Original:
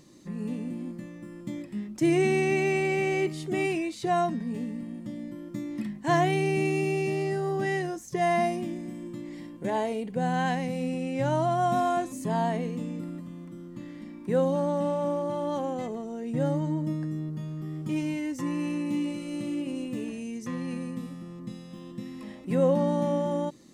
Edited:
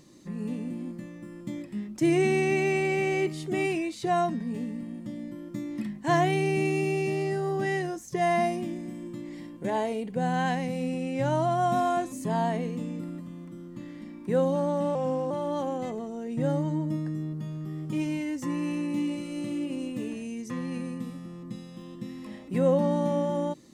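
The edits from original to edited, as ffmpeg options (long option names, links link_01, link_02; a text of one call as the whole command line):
ffmpeg -i in.wav -filter_complex "[0:a]asplit=3[link_01][link_02][link_03];[link_01]atrim=end=14.954[link_04];[link_02]atrim=start=14.95:end=15.27,asetpts=PTS-STARTPTS,asetrate=39690,aresample=44100[link_05];[link_03]atrim=start=15.266[link_06];[link_04][link_05]acrossfade=duration=0.004:curve1=hsin:curve2=hsin[link_07];[link_07][link_06]acrossfade=duration=0.004:curve1=hsin:curve2=hsin" out.wav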